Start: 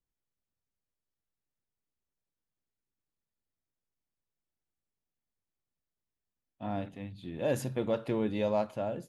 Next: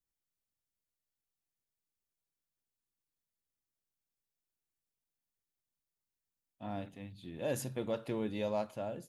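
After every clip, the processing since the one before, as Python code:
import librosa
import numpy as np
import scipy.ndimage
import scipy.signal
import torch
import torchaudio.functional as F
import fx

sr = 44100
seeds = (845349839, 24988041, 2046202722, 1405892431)

y = fx.high_shelf(x, sr, hz=4600.0, db=8.5)
y = F.gain(torch.from_numpy(y), -5.5).numpy()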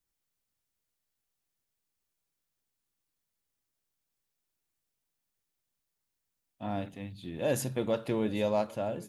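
y = x + 10.0 ** (-22.0 / 20.0) * np.pad(x, (int(793 * sr / 1000.0), 0))[:len(x)]
y = F.gain(torch.from_numpy(y), 6.0).numpy()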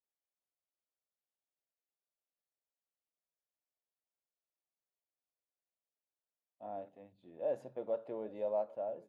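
y = fx.bandpass_q(x, sr, hz=610.0, q=2.4)
y = F.gain(torch.from_numpy(y), -4.0).numpy()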